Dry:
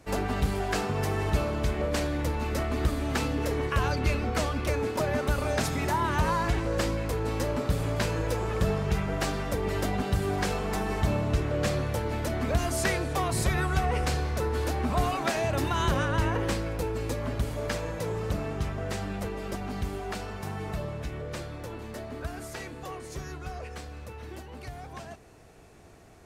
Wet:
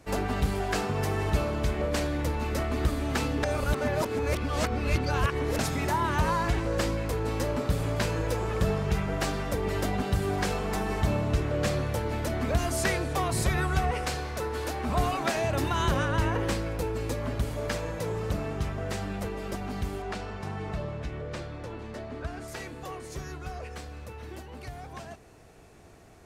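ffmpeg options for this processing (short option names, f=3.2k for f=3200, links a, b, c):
-filter_complex "[0:a]asettb=1/sr,asplit=3[a][b][c];[a]atrim=end=13.914[d];[b]atrim=start=13.91:end=14.87,asetpts=PTS-STARTPTS,afade=t=in:d=0.004:c=qsin,afade=t=out:st=0.956:d=0.004:c=qsin,lowshelf=f=290:g=-7.5[e];[c]atrim=start=14.866[f];[d][e]acrossfade=d=0.004:c1=hsin:c2=qsin[g];[g][f]acrossfade=d=0.004:c1=qsin:c2=hsin,asettb=1/sr,asplit=3[h][i][j];[h]atrim=end=20.024[k];[i]atrim=start=20.02:end=22.48,asetpts=PTS-STARTPTS,afade=t=in:d=0.004:c=qsin,afade=t=out:st=2.456:d=0.004:c=qsin,adynamicsmooth=sensitivity=5.5:basefreq=6.7k[l];[j]atrim=start=22.476[m];[k][l]acrossfade=d=0.004:c1=hsin:c2=qsin[n];[n][m]acrossfade=d=0.004:c1=qsin:c2=hsin,asplit=3[o][p][q];[o]atrim=end=3.432[r];[p]atrim=start=3.428:end=5.592,asetpts=PTS-STARTPTS,areverse[s];[q]atrim=start=5.588[t];[r][s]acrossfade=d=0.004:c1=hsin:c2=hsin[u];[u][t]acrossfade=d=0.004:c1=hsin:c2=hsin"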